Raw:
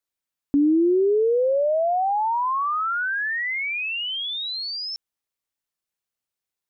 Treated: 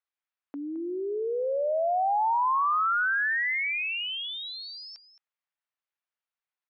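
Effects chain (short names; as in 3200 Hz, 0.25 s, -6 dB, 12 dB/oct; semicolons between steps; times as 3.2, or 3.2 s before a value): BPF 790–2500 Hz; echo 0.218 s -14 dB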